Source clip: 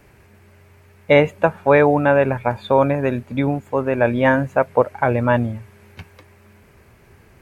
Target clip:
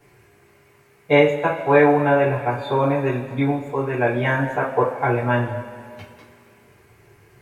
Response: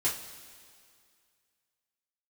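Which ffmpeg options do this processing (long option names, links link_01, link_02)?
-filter_complex "[0:a]lowshelf=frequency=340:gain=-4[link_01];[1:a]atrim=start_sample=2205[link_02];[link_01][link_02]afir=irnorm=-1:irlink=0,volume=-7.5dB"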